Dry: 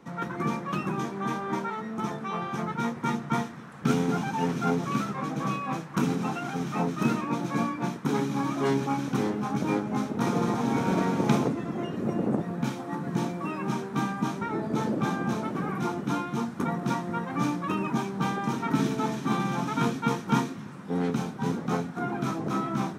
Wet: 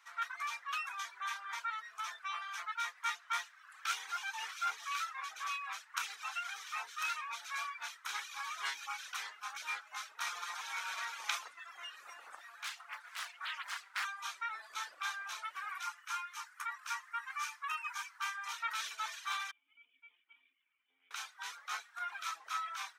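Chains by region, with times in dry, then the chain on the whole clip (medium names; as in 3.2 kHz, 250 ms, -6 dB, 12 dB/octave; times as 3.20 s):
12.65–14.05 s: high-pass 580 Hz + loudspeaker Doppler distortion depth 0.93 ms
15.83–18.46 s: steep high-pass 850 Hz 48 dB/octave + peaking EQ 3.7 kHz -7 dB 0.49 oct
19.51–21.11 s: compression 10:1, threshold -28 dBFS + cascade formant filter i + distance through air 150 m
whole clip: reverb removal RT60 0.76 s; high-pass 1.3 kHz 24 dB/octave; dynamic bell 3.4 kHz, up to +3 dB, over -52 dBFS, Q 0.91; trim -1 dB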